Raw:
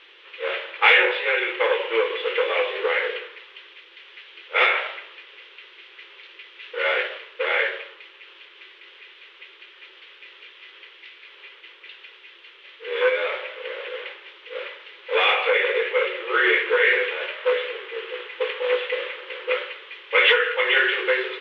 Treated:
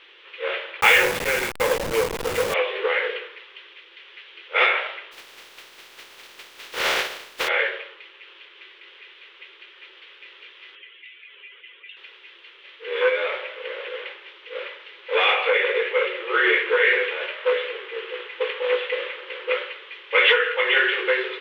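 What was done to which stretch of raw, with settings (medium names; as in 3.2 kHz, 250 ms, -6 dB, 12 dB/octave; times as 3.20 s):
0.81–2.54 s: send-on-delta sampling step -21.5 dBFS
5.11–7.47 s: spectral contrast reduction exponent 0.33
10.75–11.97 s: spectral contrast enhancement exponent 1.9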